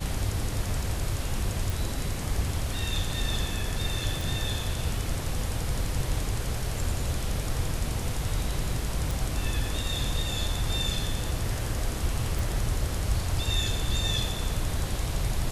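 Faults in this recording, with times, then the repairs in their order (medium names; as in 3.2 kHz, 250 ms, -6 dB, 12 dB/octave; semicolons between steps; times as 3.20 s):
1.70 s: pop
4.21 s: pop
9.11 s: pop
12.39 s: pop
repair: de-click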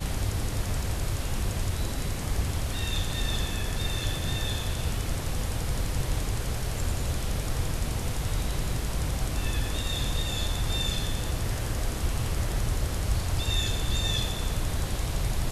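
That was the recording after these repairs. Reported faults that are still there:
nothing left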